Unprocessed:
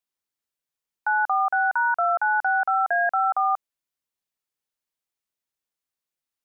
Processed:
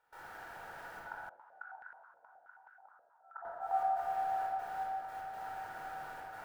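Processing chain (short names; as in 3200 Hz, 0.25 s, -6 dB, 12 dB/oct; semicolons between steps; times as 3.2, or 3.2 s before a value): per-bin compression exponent 0.6; bell 1100 Hz -7 dB 0.47 oct; limiter -23.5 dBFS, peak gain reduction 10 dB; compressor 20:1, threshold -42 dBFS, peak gain reduction 15.5 dB; analogue delay 0.344 s, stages 2048, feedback 51%, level -7 dB; step gate ".xxxxxxx.xx..x" 121 bpm -24 dB; flipped gate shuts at -44 dBFS, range -40 dB; swung echo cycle 1.053 s, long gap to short 1.5:1, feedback 40%, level -9 dB; reverb RT60 1.8 s, pre-delay 22 ms, DRR -3 dB; stuck buffer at 1.22, samples 2048, times 2; 1.29–3.45 stepped band-pass 9.4 Hz 540–1600 Hz; gain +14.5 dB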